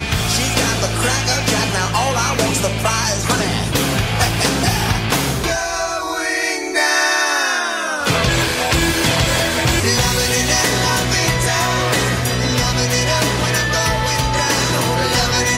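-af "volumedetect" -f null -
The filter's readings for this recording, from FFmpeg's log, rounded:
mean_volume: -17.1 dB
max_volume: -2.2 dB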